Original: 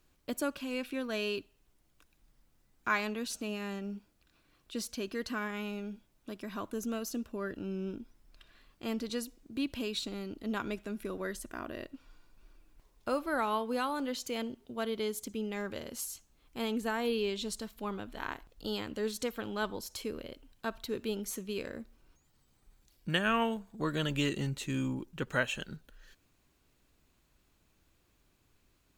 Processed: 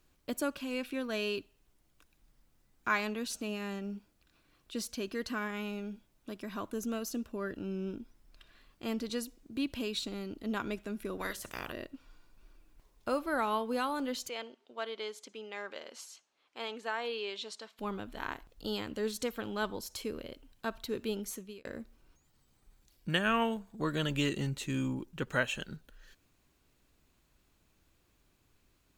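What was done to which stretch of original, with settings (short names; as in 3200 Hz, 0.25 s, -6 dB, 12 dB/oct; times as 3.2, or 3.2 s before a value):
11.19–11.71 spectral limiter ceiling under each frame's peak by 22 dB
14.29–17.79 BPF 560–5000 Hz
21.06–21.65 fade out equal-power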